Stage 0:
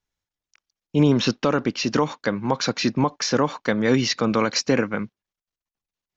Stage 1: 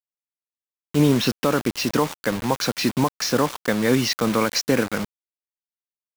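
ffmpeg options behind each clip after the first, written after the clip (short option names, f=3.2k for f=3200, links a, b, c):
-af "acrusher=bits=4:mix=0:aa=0.000001"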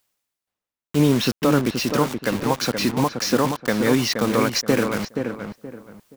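-filter_complex "[0:a]areverse,acompressor=mode=upward:threshold=-35dB:ratio=2.5,areverse,asplit=2[a][b];[b]adelay=475,lowpass=f=1.5k:p=1,volume=-5.5dB,asplit=2[c][d];[d]adelay=475,lowpass=f=1.5k:p=1,volume=0.29,asplit=2[e][f];[f]adelay=475,lowpass=f=1.5k:p=1,volume=0.29,asplit=2[g][h];[h]adelay=475,lowpass=f=1.5k:p=1,volume=0.29[i];[a][c][e][g][i]amix=inputs=5:normalize=0"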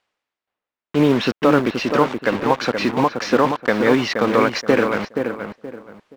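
-af "lowpass=6.5k,acrusher=bits=5:mode=log:mix=0:aa=0.000001,bass=f=250:g=-9,treble=f=4k:g=-14,volume=5.5dB"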